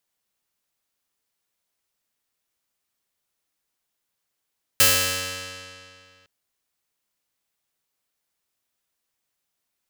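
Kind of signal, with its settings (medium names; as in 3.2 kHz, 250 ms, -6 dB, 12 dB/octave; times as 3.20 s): plucked string F#2, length 1.46 s, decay 2.35 s, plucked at 0.26, bright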